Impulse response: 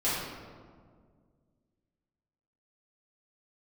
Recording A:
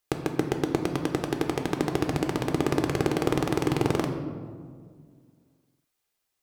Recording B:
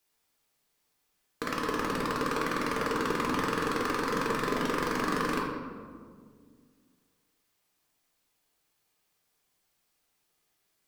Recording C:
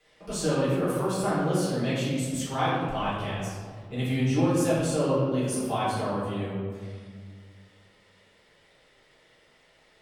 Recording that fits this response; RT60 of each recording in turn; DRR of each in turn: C; 1.9, 1.9, 1.9 s; 4.0, -2.5, -11.0 dB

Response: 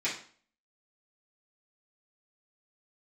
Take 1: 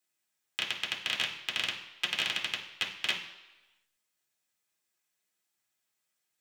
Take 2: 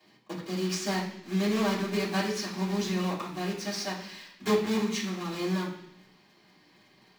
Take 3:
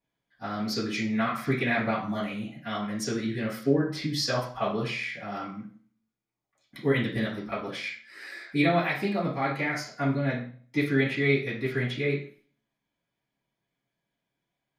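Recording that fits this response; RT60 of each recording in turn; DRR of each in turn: 3; 1.1, 0.70, 0.45 s; -2.0, -12.0, -10.5 dB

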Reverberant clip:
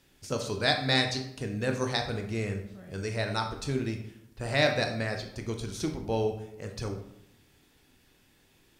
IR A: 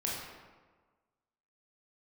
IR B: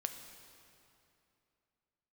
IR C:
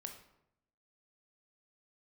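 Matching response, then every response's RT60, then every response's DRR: C; 1.4, 2.8, 0.80 s; -4.5, 6.0, 4.0 dB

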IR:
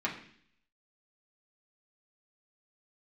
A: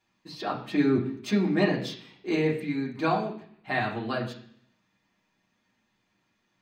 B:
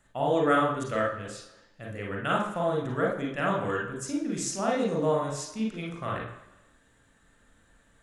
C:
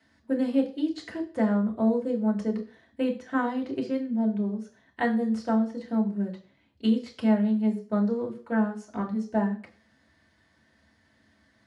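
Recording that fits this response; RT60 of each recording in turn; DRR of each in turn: A; 0.55, 1.0, 0.40 s; -5.0, -2.0, -1.0 dB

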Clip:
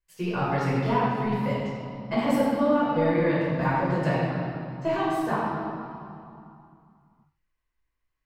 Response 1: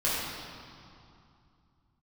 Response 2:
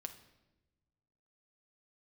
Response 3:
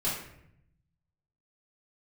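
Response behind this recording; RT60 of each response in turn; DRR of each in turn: 1; 2.5, 1.1, 0.75 s; -9.0, 6.5, -9.0 dB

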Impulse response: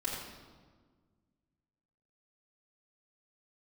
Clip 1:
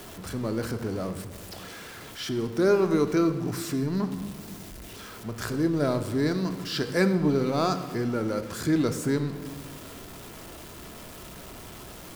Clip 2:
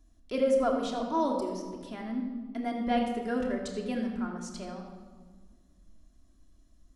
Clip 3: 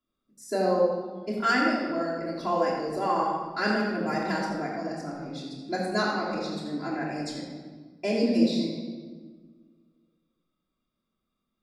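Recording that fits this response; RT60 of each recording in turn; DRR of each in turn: 3; 1.7, 1.6, 1.5 s; 8.0, 0.0, -7.5 dB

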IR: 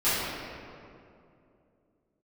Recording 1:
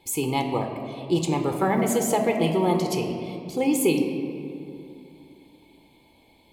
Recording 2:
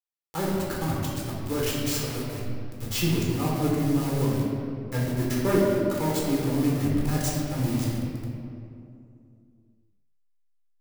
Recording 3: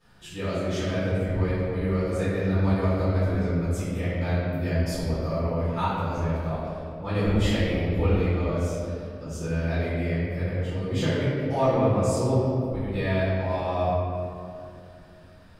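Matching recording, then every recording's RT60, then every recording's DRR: 3; 2.6, 2.6, 2.6 s; 3.5, -5.5, -15.5 dB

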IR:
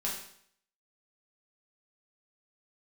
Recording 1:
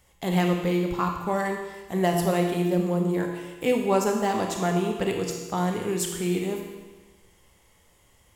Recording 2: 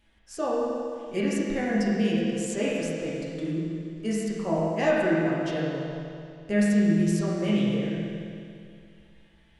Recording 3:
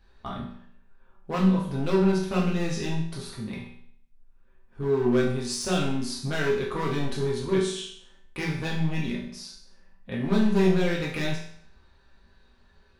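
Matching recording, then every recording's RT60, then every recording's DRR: 3; 1.3, 2.4, 0.65 s; 1.5, -7.5, -5.0 dB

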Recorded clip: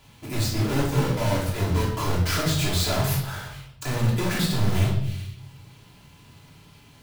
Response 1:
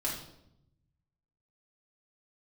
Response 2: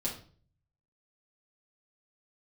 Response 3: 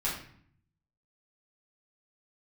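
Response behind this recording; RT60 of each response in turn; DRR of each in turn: 1; 0.80, 0.45, 0.60 s; -5.5, -5.5, -8.0 dB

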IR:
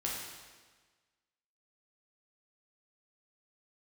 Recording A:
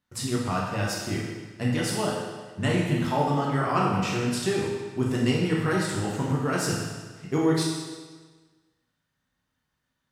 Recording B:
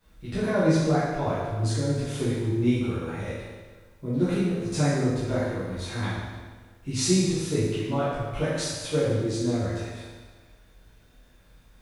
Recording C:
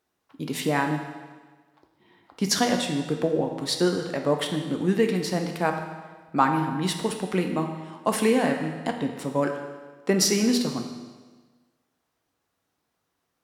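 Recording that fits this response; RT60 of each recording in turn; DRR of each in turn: A; 1.4, 1.4, 1.4 s; -4.0, -13.0, 4.0 dB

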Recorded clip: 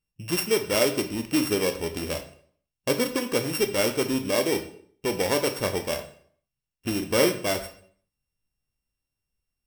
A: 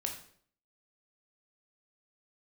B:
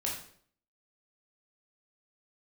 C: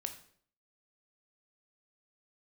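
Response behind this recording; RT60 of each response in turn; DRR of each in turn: C; 0.55, 0.60, 0.60 s; 2.0, -3.5, 6.0 dB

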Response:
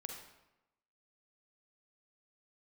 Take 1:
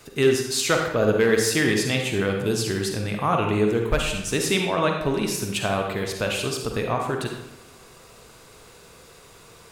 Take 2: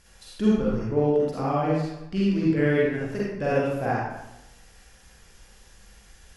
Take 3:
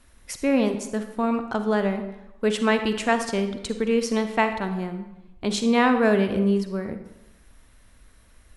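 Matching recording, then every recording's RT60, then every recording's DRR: 1; 0.95, 0.95, 0.95 s; 2.0, -6.5, 7.5 dB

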